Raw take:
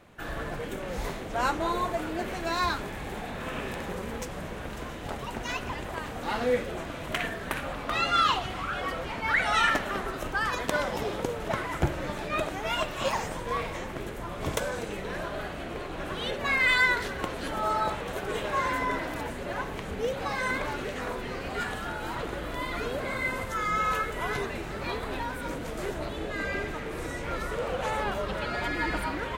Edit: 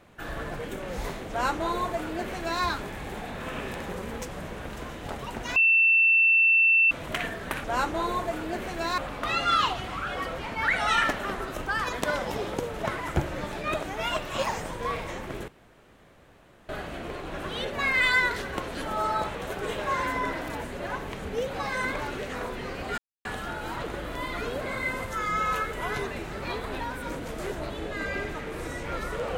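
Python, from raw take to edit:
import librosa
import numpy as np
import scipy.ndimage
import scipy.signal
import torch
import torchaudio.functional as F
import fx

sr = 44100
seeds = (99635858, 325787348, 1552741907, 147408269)

y = fx.edit(x, sr, fx.duplicate(start_s=1.3, length_s=1.34, to_s=7.64),
    fx.bleep(start_s=5.56, length_s=1.35, hz=2680.0, db=-16.5),
    fx.room_tone_fill(start_s=14.14, length_s=1.21),
    fx.insert_silence(at_s=21.64, length_s=0.27), tone=tone)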